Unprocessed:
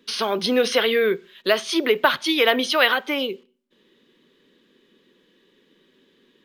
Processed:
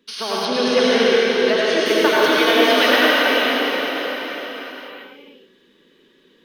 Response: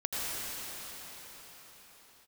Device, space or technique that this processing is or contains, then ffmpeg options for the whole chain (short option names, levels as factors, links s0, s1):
cathedral: -filter_complex "[1:a]atrim=start_sample=2205[s0];[0:a][s0]afir=irnorm=-1:irlink=0,asettb=1/sr,asplit=3[s1][s2][s3];[s1]atrim=end=0.454[s4];[s2]atrim=start=0.45:end=1.86,asetpts=PTS-STARTPTS,afade=t=in:d=0.004:c=qsin,afade=t=out:st=1.406:d=0.004:c=qsin,lowpass=6900[s5];[s3]atrim=start=1.856[s6];[s4][s5]acrossfade=d=0.004:c1=hsin:c2=qsin[s7];[s7][s6]acrossfade=d=0.004:c1=qsin:c2=hsin,volume=0.708"